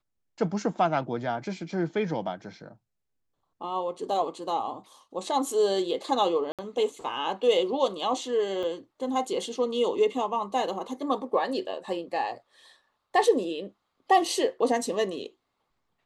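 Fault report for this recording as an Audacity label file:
6.520000	6.590000	dropout 67 ms
8.630000	8.630000	dropout 3.9 ms

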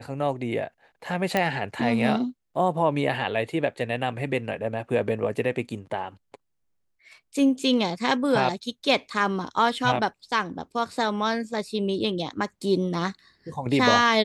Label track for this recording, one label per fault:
1.370000	1.370000	pop -9 dBFS

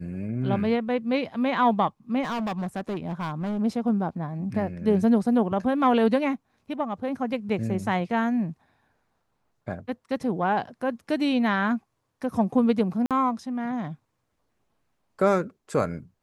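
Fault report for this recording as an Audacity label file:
2.220000	3.590000	clipped -26 dBFS
13.060000	13.110000	dropout 47 ms

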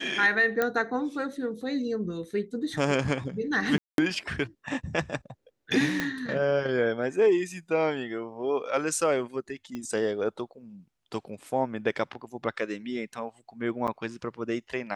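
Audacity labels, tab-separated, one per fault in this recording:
0.620000	0.620000	pop -12 dBFS
3.780000	3.980000	dropout 202 ms
6.000000	6.000000	pop -13 dBFS
9.750000	9.750000	pop -23 dBFS
13.870000	13.880000	dropout 7.8 ms

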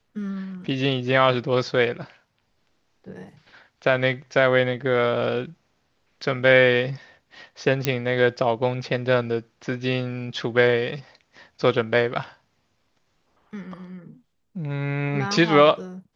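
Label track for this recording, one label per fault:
7.850000	7.850000	pop -5 dBFS

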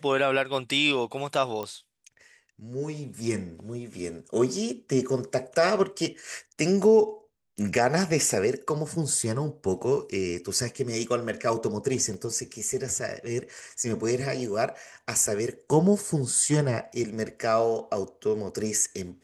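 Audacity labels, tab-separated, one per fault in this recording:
1.630000	1.630000	pop -20 dBFS
12.140000	12.140000	dropout 2.7 ms

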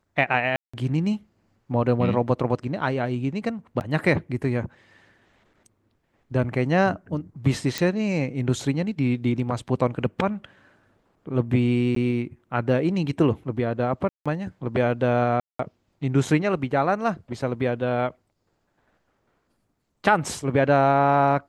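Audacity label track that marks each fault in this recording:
0.560000	0.730000	dropout 175 ms
3.800000	3.810000	dropout 9.4 ms
7.780000	7.780000	pop
11.950000	11.960000	dropout 13 ms
14.090000	14.260000	dropout 166 ms
15.400000	15.590000	dropout 194 ms

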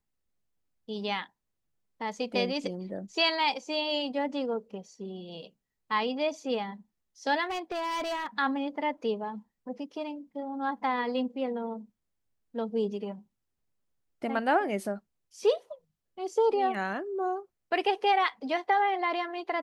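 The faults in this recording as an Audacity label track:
7.460000	8.270000	clipped -29 dBFS

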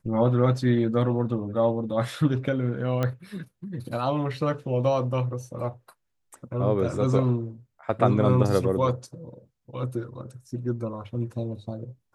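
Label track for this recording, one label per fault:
3.030000	3.030000	pop -14 dBFS

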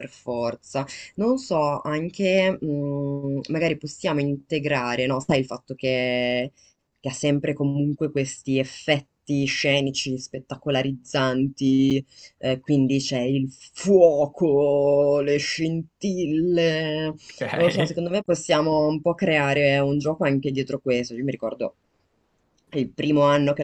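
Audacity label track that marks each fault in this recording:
11.900000	11.910000	dropout 7.6 ms

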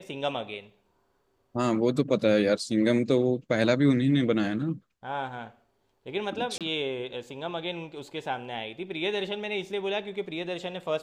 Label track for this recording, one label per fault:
6.580000	6.610000	dropout 27 ms

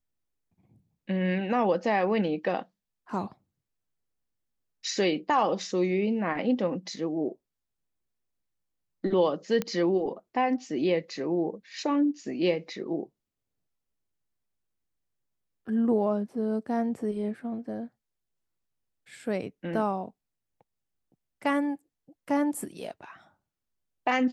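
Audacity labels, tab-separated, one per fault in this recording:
9.620000	9.620000	pop -15 dBFS

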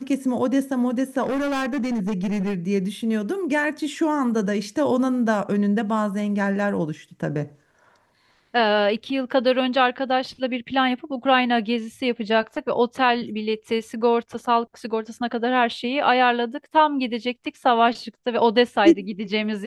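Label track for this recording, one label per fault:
1.230000	2.550000	clipped -21 dBFS

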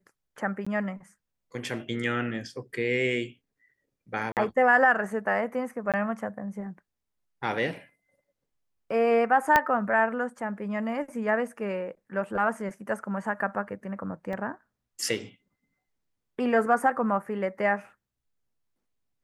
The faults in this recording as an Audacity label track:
0.650000	0.670000	dropout 15 ms
4.320000	4.370000	dropout 48 ms
5.920000	5.940000	dropout 17 ms
9.560000	9.560000	pop -7 dBFS
14.330000	14.330000	dropout 2.8 ms

